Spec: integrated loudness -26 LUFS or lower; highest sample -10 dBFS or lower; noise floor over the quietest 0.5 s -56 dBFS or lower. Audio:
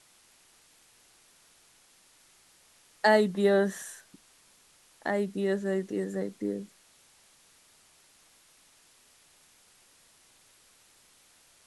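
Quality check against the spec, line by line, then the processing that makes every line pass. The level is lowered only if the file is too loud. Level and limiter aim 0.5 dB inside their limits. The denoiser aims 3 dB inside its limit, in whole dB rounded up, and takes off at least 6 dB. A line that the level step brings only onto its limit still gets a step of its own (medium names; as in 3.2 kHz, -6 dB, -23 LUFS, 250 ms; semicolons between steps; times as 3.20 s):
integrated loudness -28.5 LUFS: pass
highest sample -10.5 dBFS: pass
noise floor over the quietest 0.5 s -62 dBFS: pass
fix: none needed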